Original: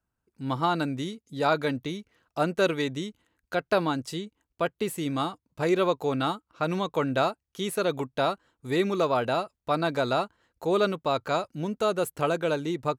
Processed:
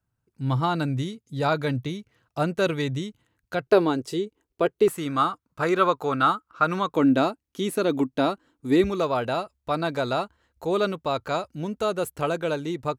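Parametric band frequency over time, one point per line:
parametric band +12.5 dB 0.66 octaves
120 Hz
from 0:03.67 400 Hz
from 0:04.88 1,300 Hz
from 0:06.94 280 Hz
from 0:08.84 66 Hz

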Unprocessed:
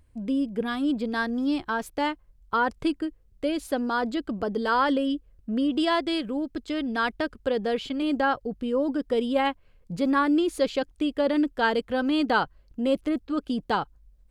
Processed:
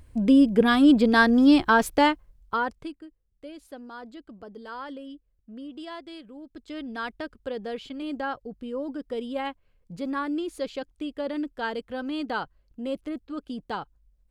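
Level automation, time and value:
0:01.90 +9 dB
0:02.66 −3.5 dB
0:02.98 −15 dB
0:06.37 −15 dB
0:06.77 −7 dB

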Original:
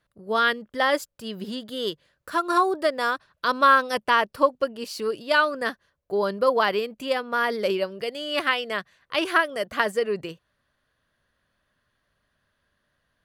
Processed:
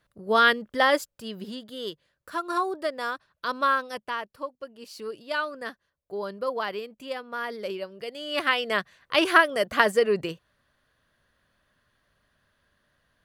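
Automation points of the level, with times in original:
0:00.70 +2.5 dB
0:01.70 −6 dB
0:03.65 −6 dB
0:04.56 −16 dB
0:04.94 −8.5 dB
0:07.88 −8.5 dB
0:08.77 +3 dB

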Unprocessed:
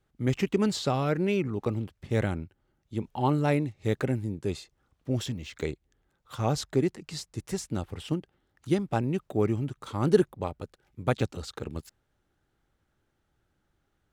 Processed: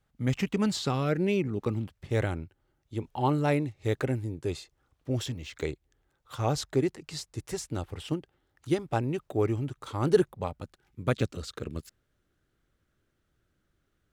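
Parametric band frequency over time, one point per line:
parametric band −11 dB 0.33 octaves
0:00.63 360 Hz
0:01.36 1,600 Hz
0:02.12 200 Hz
0:10.09 200 Hz
0:11.13 840 Hz

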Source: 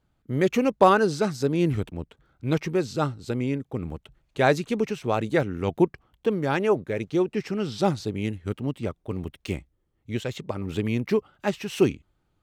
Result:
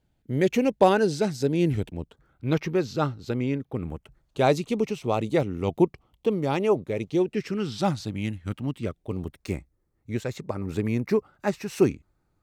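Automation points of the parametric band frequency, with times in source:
parametric band −12.5 dB 0.4 octaves
0:01.96 1,200 Hz
0:02.48 8,600 Hz
0:03.60 8,600 Hz
0:04.50 1,600 Hz
0:07.06 1,600 Hz
0:07.89 410 Hz
0:08.62 410 Hz
0:09.36 3,100 Hz

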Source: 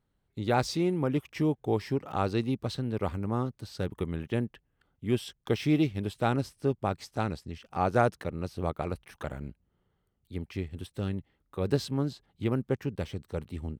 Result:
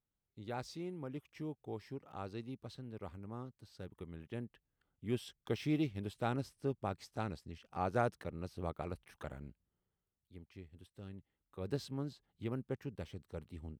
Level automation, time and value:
0:04.01 −16 dB
0:05.07 −9 dB
0:09.29 −9 dB
0:10.43 −18 dB
0:11.01 −18 dB
0:11.76 −11 dB

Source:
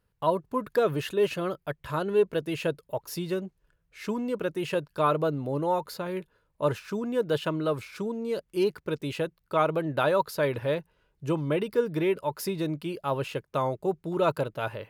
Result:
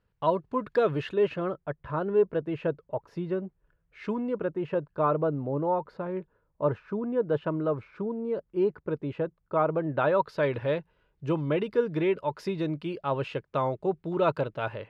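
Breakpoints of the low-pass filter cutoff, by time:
0:00.81 3,800 Hz
0:01.60 1,500 Hz
0:03.43 1,500 Hz
0:04.08 2,600 Hz
0:04.53 1,300 Hz
0:09.68 1,300 Hz
0:10.47 3,500 Hz

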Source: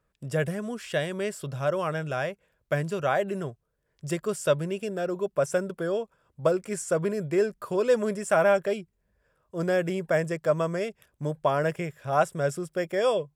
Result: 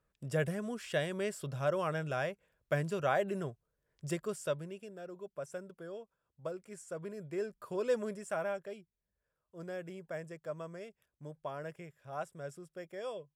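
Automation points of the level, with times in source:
0:04.05 −5.5 dB
0:04.92 −17 dB
0:06.89 −17 dB
0:07.91 −9 dB
0:08.62 −17 dB

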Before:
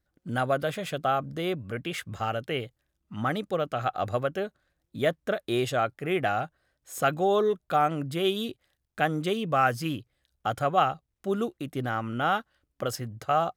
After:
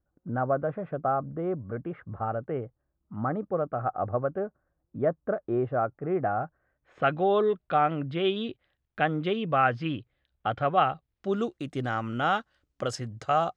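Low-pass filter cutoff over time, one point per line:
low-pass filter 24 dB per octave
0:06.34 1,300 Hz
0:07.19 3,400 Hz
0:10.90 3,400 Hz
0:11.54 7,900 Hz

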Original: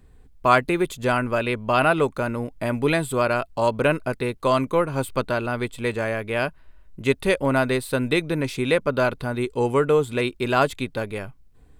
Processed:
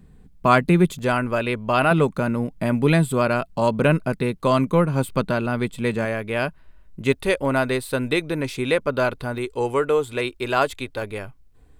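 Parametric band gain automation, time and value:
parametric band 180 Hz 0.73 octaves
+15 dB
from 0:00.99 +3 dB
from 0:01.91 +12.5 dB
from 0:06.05 +4.5 dB
from 0:07.13 −3 dB
from 0:09.38 −13.5 dB
from 0:11.02 −3.5 dB

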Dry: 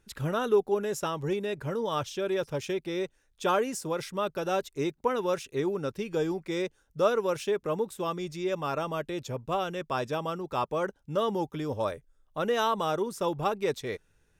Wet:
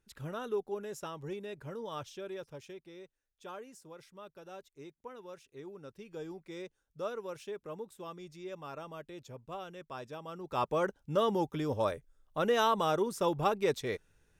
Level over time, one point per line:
0:02.09 −10.5 dB
0:03.04 −19.5 dB
0:05.40 −19.5 dB
0:06.37 −13 dB
0:10.24 −13 dB
0:10.65 −1 dB

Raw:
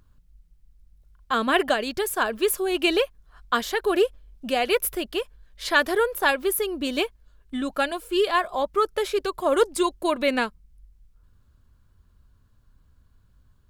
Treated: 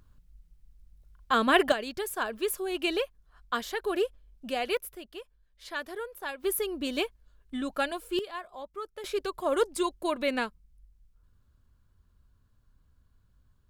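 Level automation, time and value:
−1 dB
from 0:01.72 −7.5 dB
from 0:04.77 −15.5 dB
from 0:06.44 −5 dB
from 0:08.19 −16.5 dB
from 0:09.04 −6 dB

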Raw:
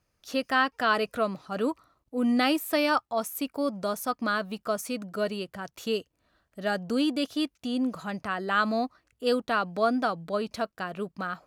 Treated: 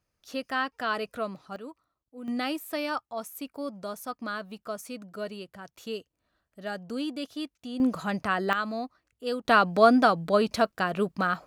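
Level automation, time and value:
−5 dB
from 0:01.56 −14.5 dB
from 0:02.28 −6.5 dB
from 0:07.80 +4 dB
from 0:08.53 −5.5 dB
from 0:09.45 +6.5 dB

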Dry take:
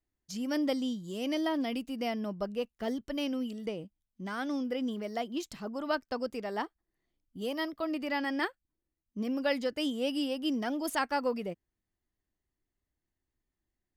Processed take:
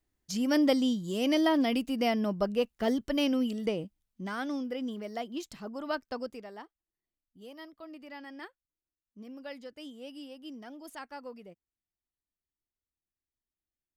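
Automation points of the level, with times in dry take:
0:03.77 +5.5 dB
0:04.70 −2 dB
0:06.21 −2 dB
0:06.64 −13 dB

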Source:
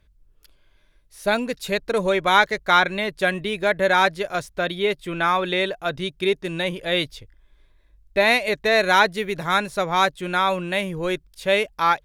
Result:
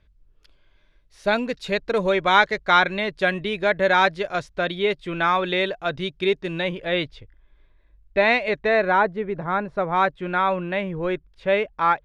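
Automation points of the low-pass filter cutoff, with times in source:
0:06.38 4,800 Hz
0:06.90 2,900 Hz
0:08.54 2,900 Hz
0:09.02 1,200 Hz
0:09.64 1,200 Hz
0:10.10 2,100 Hz

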